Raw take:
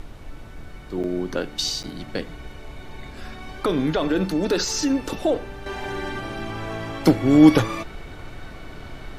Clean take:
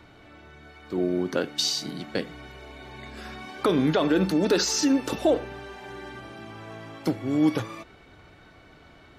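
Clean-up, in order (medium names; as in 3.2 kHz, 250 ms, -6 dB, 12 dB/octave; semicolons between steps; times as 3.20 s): interpolate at 1.03/1.83 s, 7.9 ms; noise print and reduce 13 dB; trim 0 dB, from 5.66 s -10 dB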